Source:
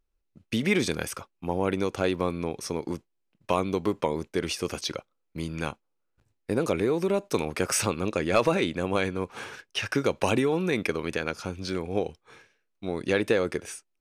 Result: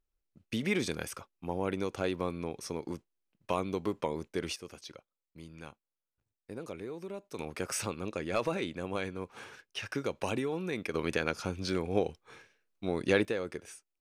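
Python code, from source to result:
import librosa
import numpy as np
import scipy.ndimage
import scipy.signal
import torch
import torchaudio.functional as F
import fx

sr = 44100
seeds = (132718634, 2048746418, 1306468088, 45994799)

y = fx.gain(x, sr, db=fx.steps((0.0, -6.5), (4.56, -16.0), (7.39, -9.0), (10.94, -1.5), (13.25, -10.0)))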